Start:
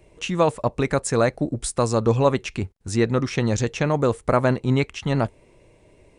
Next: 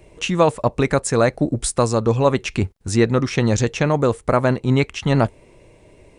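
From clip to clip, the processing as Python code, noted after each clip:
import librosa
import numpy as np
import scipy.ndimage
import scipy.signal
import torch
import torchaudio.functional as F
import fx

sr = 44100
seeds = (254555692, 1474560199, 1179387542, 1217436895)

y = fx.rider(x, sr, range_db=4, speed_s=0.5)
y = y * librosa.db_to_amplitude(3.5)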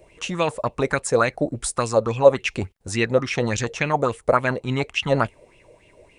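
y = fx.high_shelf(x, sr, hz=3800.0, db=5.5)
y = fx.bell_lfo(y, sr, hz=3.5, low_hz=510.0, high_hz=2900.0, db=15)
y = y * librosa.db_to_amplitude(-8.0)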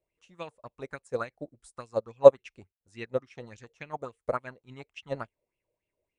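y = fx.upward_expand(x, sr, threshold_db=-29.0, expansion=2.5)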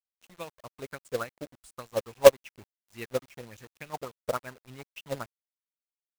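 y = fx.quant_companded(x, sr, bits=4)
y = y * librosa.db_to_amplitude(-1.0)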